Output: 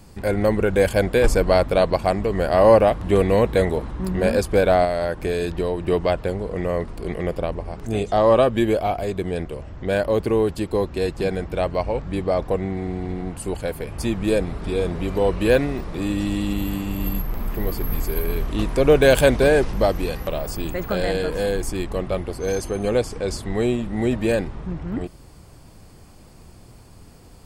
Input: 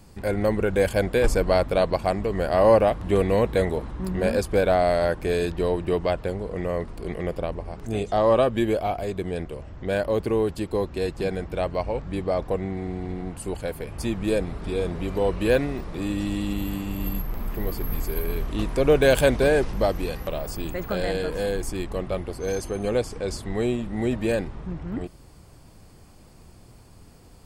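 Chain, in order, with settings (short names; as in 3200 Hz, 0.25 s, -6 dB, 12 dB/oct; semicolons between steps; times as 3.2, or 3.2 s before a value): 4.84–5.86 compressor, threshold -23 dBFS, peak gain reduction 6 dB; gain +3.5 dB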